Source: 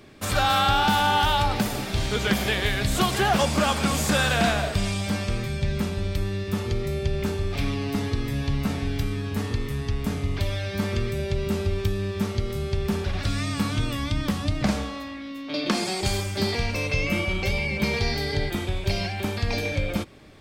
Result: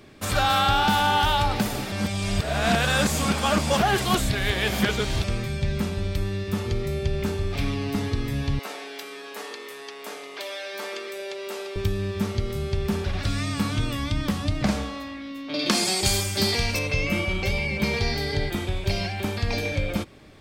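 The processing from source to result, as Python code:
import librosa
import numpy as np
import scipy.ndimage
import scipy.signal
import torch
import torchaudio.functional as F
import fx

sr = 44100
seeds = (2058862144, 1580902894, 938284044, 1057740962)

y = fx.highpass(x, sr, hz=420.0, slope=24, at=(8.59, 11.76))
y = fx.high_shelf(y, sr, hz=3700.0, db=10.5, at=(15.59, 16.79))
y = fx.edit(y, sr, fx.reverse_span(start_s=1.92, length_s=3.32), tone=tone)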